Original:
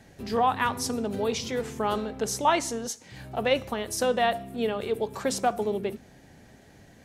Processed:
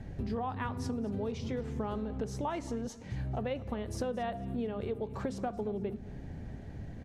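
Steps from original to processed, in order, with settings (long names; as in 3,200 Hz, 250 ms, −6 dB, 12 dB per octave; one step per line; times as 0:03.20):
RIAA equalisation playback
downward compressor 6 to 1, threshold −33 dBFS, peak gain reduction 16 dB
on a send: repeating echo 224 ms, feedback 34%, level −19 dB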